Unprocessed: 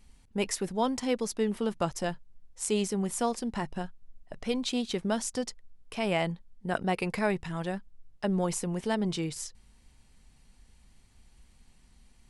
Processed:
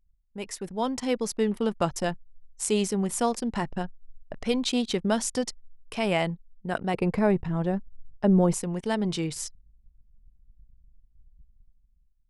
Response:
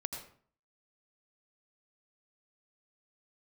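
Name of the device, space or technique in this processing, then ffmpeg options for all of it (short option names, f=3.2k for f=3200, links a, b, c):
voice memo with heavy noise removal: -filter_complex "[0:a]asettb=1/sr,asplit=3[a][b][c];[a]atrim=end=6.944[d];[b]atrim=start=6.94:end=8.54,asetpts=PTS-STARTPTS,afade=t=in:d=0.004:c=qsin,afade=t=out:st=1.596:d=0.004:c=qsin,tiltshelf=f=1.2k:g=8[e];[c]atrim=start=8.536[f];[d][e]acrossfade=d=0.004:c1=hsin:c2=qsin[g];[g][f]acrossfade=d=0.004:c1=qsin:c2=hsin,anlmdn=0.0398,dynaudnorm=f=160:g=9:m=14dB,volume=-8.5dB"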